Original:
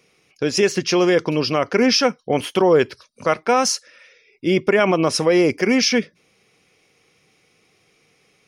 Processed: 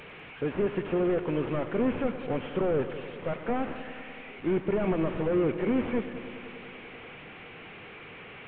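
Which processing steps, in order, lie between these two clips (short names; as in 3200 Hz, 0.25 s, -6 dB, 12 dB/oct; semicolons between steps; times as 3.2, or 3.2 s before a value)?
delta modulation 16 kbps, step -31.5 dBFS; on a send: multi-head echo 98 ms, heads first and second, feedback 73%, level -16.5 dB; on the sum: gain -8 dB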